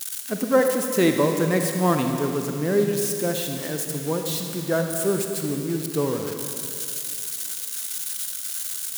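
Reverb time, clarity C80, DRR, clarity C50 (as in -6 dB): 2.5 s, 5.0 dB, 4.0 dB, 4.5 dB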